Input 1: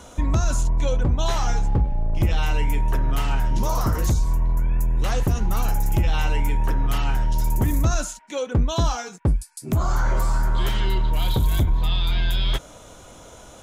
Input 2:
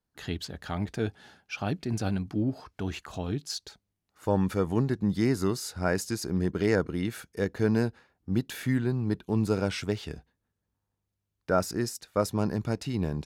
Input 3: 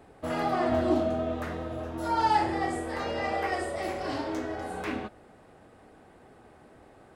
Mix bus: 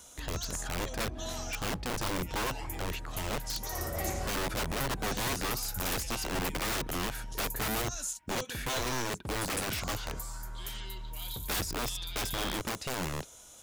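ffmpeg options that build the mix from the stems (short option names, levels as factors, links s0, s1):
-filter_complex "[0:a]acompressor=threshold=0.0891:ratio=6,crystalizer=i=6:c=0,volume=0.133[s0];[1:a]aeval=exprs='(mod(22.4*val(0)+1,2)-1)/22.4':c=same,volume=0.891,asplit=2[s1][s2];[2:a]asubboost=boost=5.5:cutoff=160,adelay=200,volume=0.75,afade=t=in:st=3.6:d=0.39:silence=0.281838[s3];[s2]apad=whole_len=324201[s4];[s3][s4]sidechaincompress=threshold=0.00398:ratio=8:attack=16:release=142[s5];[s0][s1][s5]amix=inputs=3:normalize=0"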